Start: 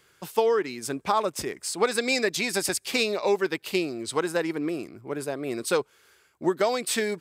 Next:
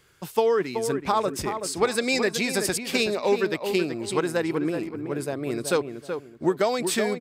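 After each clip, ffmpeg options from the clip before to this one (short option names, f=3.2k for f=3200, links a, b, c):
-filter_complex "[0:a]lowshelf=f=150:g=10,asplit=2[a][b];[b]adelay=377,lowpass=f=1.8k:p=1,volume=-7dB,asplit=2[c][d];[d]adelay=377,lowpass=f=1.8k:p=1,volume=0.29,asplit=2[e][f];[f]adelay=377,lowpass=f=1.8k:p=1,volume=0.29,asplit=2[g][h];[h]adelay=377,lowpass=f=1.8k:p=1,volume=0.29[i];[a][c][e][g][i]amix=inputs=5:normalize=0"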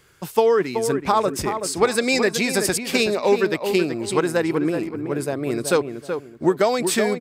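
-af "equalizer=f=3.5k:w=1.5:g=-2,volume=4.5dB"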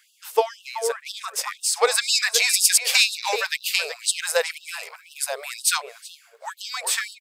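-filter_complex "[0:a]acrossover=split=2700[a][b];[b]dynaudnorm=f=320:g=11:m=16dB[c];[a][c]amix=inputs=2:normalize=0,afftfilt=real='re*gte(b*sr/1024,400*pow(2700/400,0.5+0.5*sin(2*PI*2*pts/sr)))':imag='im*gte(b*sr/1024,400*pow(2700/400,0.5+0.5*sin(2*PI*2*pts/sr)))':win_size=1024:overlap=0.75"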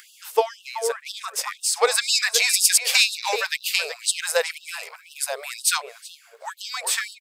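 -af "acompressor=mode=upward:threshold=-41dB:ratio=2.5"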